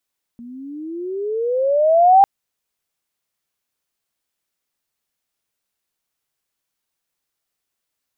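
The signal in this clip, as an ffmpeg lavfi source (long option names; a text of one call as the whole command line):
ffmpeg -f lavfi -i "aevalsrc='pow(10,(-6+27.5*(t/1.85-1))/20)*sin(2*PI*232*1.85/(21.5*log(2)/12)*(exp(21.5*log(2)/12*t/1.85)-1))':duration=1.85:sample_rate=44100" out.wav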